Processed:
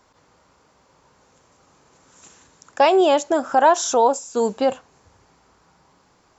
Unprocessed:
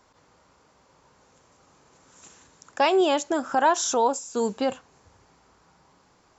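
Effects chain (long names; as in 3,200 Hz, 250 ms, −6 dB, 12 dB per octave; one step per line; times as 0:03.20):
dynamic equaliser 630 Hz, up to +6 dB, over −36 dBFS, Q 1.3
level +2 dB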